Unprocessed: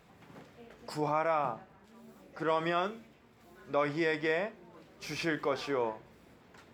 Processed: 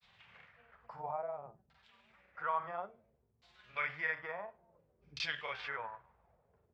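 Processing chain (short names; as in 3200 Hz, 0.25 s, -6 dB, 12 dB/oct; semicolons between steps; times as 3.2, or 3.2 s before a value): LFO low-pass saw down 0.58 Hz 280–4400 Hz; grains, spray 31 ms, pitch spread up and down by 0 st; passive tone stack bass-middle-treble 10-0-10; gain +2 dB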